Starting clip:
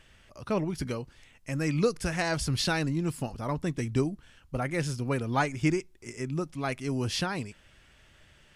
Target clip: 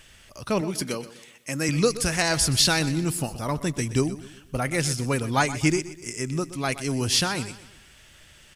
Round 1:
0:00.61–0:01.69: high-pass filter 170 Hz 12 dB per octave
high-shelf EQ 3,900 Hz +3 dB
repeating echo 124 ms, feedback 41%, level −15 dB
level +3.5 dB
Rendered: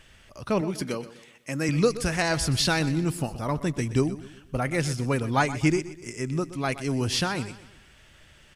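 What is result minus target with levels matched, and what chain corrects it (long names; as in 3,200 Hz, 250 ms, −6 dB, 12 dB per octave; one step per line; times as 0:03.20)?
8,000 Hz band −5.5 dB
0:00.61–0:01.69: high-pass filter 170 Hz 12 dB per octave
high-shelf EQ 3,900 Hz +12.5 dB
repeating echo 124 ms, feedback 41%, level −15 dB
level +3.5 dB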